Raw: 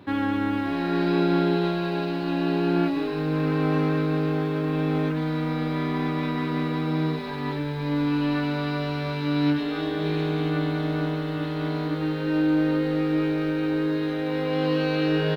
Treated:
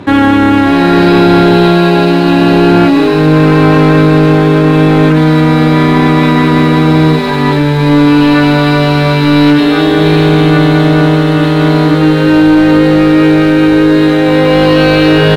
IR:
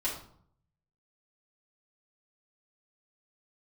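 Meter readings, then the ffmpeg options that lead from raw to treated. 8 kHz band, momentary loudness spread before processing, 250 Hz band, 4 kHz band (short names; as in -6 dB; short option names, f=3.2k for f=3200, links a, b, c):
n/a, 5 LU, +18.0 dB, +19.0 dB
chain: -af "apsyclip=21.5dB,adynamicsmooth=sensitivity=7:basefreq=3k,volume=-1.5dB"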